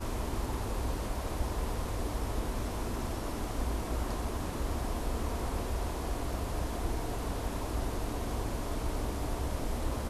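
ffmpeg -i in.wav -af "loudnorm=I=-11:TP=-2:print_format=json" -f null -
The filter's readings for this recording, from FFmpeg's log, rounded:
"input_i" : "-36.0",
"input_tp" : "-20.2",
"input_lra" : "0.3",
"input_thresh" : "-46.0",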